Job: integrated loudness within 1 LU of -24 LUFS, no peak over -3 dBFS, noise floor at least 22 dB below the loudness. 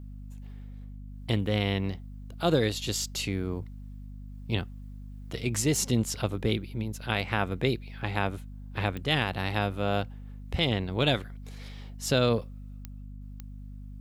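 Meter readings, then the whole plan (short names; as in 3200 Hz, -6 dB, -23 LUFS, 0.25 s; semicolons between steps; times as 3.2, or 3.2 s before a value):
clicks 4; hum 50 Hz; harmonics up to 250 Hz; hum level -39 dBFS; loudness -29.5 LUFS; peak -10.0 dBFS; loudness target -24.0 LUFS
-> de-click; notches 50/100/150/200/250 Hz; gain +5.5 dB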